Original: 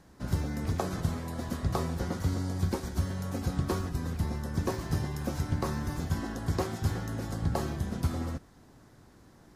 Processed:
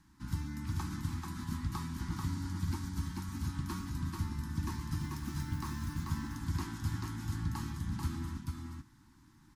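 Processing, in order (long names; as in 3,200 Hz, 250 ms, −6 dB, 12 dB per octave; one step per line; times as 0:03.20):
elliptic band-stop filter 320–890 Hz, stop band 40 dB
0:05.00–0:05.95: noise that follows the level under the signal 26 dB
single-tap delay 438 ms −3.5 dB
level −6 dB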